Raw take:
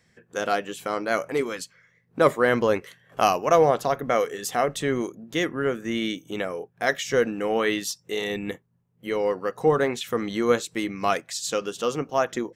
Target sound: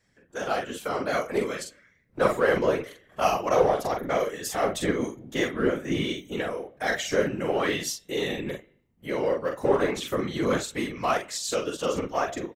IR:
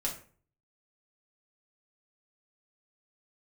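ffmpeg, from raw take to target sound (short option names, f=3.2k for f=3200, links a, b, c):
-filter_complex "[0:a]asplit=2[a][b];[b]asoftclip=type=hard:threshold=-20dB,volume=-6dB[c];[a][c]amix=inputs=2:normalize=0,asplit=2[d][e];[e]adelay=43,volume=-4.5dB[f];[d][f]amix=inputs=2:normalize=0,bandreject=f=129.6:t=h:w=4,bandreject=f=259.2:t=h:w=4,bandreject=f=388.8:t=h:w=4,bandreject=f=518.4:t=h:w=4,bandreject=f=648:t=h:w=4,bandreject=f=777.6:t=h:w=4,bandreject=f=907.2:t=h:w=4,bandreject=f=1.0368k:t=h:w=4,bandreject=f=1.1664k:t=h:w=4,bandreject=f=1.296k:t=h:w=4,bandreject=f=1.4256k:t=h:w=4,bandreject=f=1.5552k:t=h:w=4,bandreject=f=1.6848k:t=h:w=4,bandreject=f=1.8144k:t=h:w=4,bandreject=f=1.944k:t=h:w=4,bandreject=f=2.0736k:t=h:w=4,bandreject=f=2.2032k:t=h:w=4,bandreject=f=2.3328k:t=h:w=4,bandreject=f=2.4624k:t=h:w=4,bandreject=f=2.592k:t=h:w=4,bandreject=f=2.7216k:t=h:w=4,bandreject=f=2.8512k:t=h:w=4,bandreject=f=2.9808k:t=h:w=4,bandreject=f=3.1104k:t=h:w=4,bandreject=f=3.24k:t=h:w=4,bandreject=f=3.3696k:t=h:w=4,bandreject=f=3.4992k:t=h:w=4,bandreject=f=3.6288k:t=h:w=4,bandreject=f=3.7584k:t=h:w=4,bandreject=f=3.888k:t=h:w=4,bandreject=f=4.0176k:t=h:w=4,asplit=2[g][h];[1:a]atrim=start_sample=2205[i];[h][i]afir=irnorm=-1:irlink=0,volume=-21.5dB[j];[g][j]amix=inputs=2:normalize=0,afftfilt=real='hypot(re,im)*cos(2*PI*random(0))':imag='hypot(re,im)*sin(2*PI*random(1))':win_size=512:overlap=0.75,dynaudnorm=f=150:g=7:m=4dB,volume=-4dB"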